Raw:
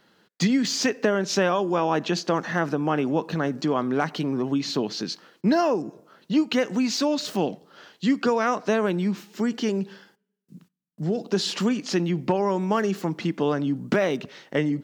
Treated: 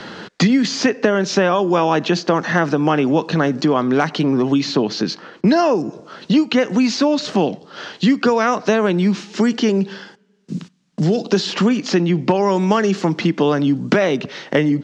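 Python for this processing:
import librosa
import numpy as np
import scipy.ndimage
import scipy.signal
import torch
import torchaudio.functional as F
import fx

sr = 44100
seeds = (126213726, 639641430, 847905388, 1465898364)

y = scipy.signal.sosfilt(scipy.signal.butter(4, 6800.0, 'lowpass', fs=sr, output='sos'), x)
y = fx.band_squash(y, sr, depth_pct=70)
y = y * 10.0 ** (7.0 / 20.0)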